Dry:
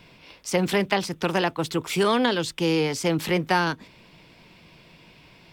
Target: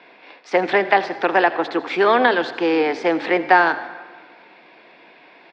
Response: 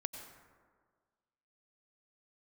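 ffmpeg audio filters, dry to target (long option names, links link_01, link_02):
-filter_complex "[0:a]highpass=frequency=290:width=0.5412,highpass=frequency=290:width=1.3066,equalizer=frequency=750:width_type=q:width=4:gain=7,equalizer=frequency=1700:width_type=q:width=4:gain=6,equalizer=frequency=3000:width_type=q:width=4:gain=-8,lowpass=frequency=3400:width=0.5412,lowpass=frequency=3400:width=1.3066,asplit=4[link_01][link_02][link_03][link_04];[link_02]adelay=82,afreqshift=-33,volume=-17dB[link_05];[link_03]adelay=164,afreqshift=-66,volume=-26.4dB[link_06];[link_04]adelay=246,afreqshift=-99,volume=-35.7dB[link_07];[link_01][link_05][link_06][link_07]amix=inputs=4:normalize=0,asplit=2[link_08][link_09];[1:a]atrim=start_sample=2205,highshelf=frequency=3800:gain=11.5[link_10];[link_09][link_10]afir=irnorm=-1:irlink=0,volume=-6.5dB[link_11];[link_08][link_11]amix=inputs=2:normalize=0,volume=2.5dB"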